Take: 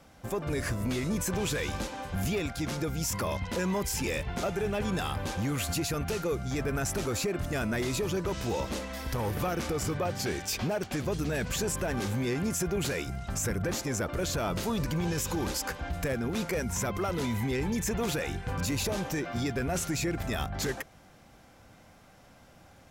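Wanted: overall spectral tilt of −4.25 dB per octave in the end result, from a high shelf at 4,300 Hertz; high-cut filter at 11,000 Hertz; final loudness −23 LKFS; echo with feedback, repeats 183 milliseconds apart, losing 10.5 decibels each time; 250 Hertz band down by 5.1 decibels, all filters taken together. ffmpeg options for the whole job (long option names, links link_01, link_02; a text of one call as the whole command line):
ffmpeg -i in.wav -af "lowpass=11000,equalizer=frequency=250:width_type=o:gain=-7.5,highshelf=frequency=4300:gain=5,aecho=1:1:183|366|549:0.299|0.0896|0.0269,volume=8.5dB" out.wav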